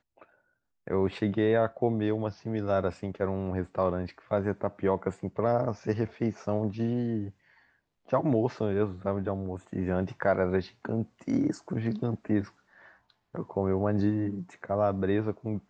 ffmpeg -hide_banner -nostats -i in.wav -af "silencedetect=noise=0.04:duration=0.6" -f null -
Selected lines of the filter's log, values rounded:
silence_start: 0.00
silence_end: 0.88 | silence_duration: 0.88
silence_start: 7.24
silence_end: 8.13 | silence_duration: 0.89
silence_start: 12.41
silence_end: 13.35 | silence_duration: 0.94